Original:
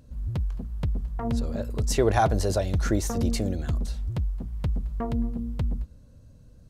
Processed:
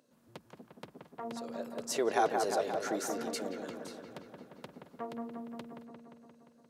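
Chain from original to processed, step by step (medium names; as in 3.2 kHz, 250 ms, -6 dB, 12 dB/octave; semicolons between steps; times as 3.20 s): Bessel high-pass 370 Hz, order 4; feedback echo behind a low-pass 175 ms, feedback 69%, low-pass 2.3 kHz, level -4.5 dB; trim -6 dB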